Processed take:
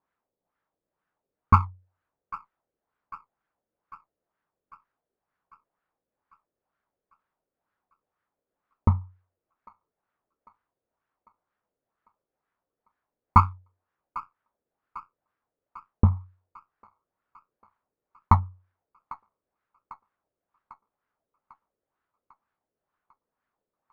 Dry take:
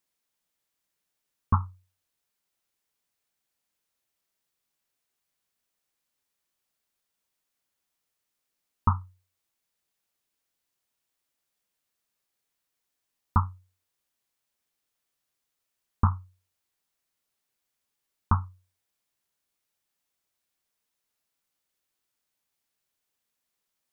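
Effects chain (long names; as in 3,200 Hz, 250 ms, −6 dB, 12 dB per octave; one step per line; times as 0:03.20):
auto-filter low-pass sine 2.1 Hz 470–1,500 Hz
delay with a high-pass on its return 798 ms, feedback 57%, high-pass 1,500 Hz, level −11 dB
windowed peak hold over 3 samples
level +4 dB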